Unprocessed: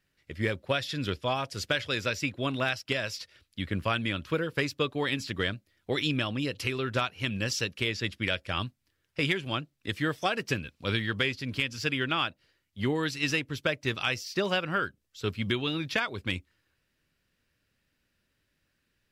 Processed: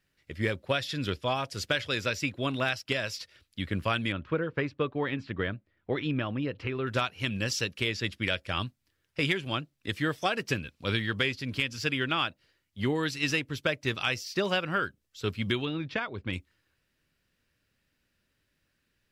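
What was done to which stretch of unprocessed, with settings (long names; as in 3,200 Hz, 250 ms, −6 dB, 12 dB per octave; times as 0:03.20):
0:04.12–0:06.87: low-pass filter 1,900 Hz
0:15.65–0:16.33: head-to-tape spacing loss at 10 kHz 23 dB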